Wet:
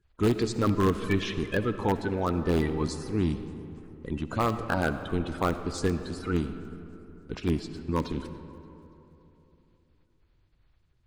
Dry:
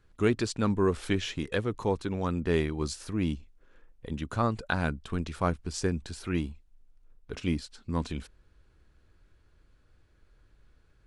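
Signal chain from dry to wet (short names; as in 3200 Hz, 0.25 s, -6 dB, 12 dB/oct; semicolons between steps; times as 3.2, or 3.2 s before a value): bin magnitudes rounded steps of 30 dB; gate -53 dBFS, range -9 dB; in parallel at -8 dB: wrapped overs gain 18 dB; on the sum: high shelf 5400 Hz -7 dB; notch 5700 Hz, Q 26; thin delay 0.287 s, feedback 52%, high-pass 5500 Hz, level -21 dB; digital reverb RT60 3.2 s, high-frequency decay 0.45×, pre-delay 30 ms, DRR 10 dB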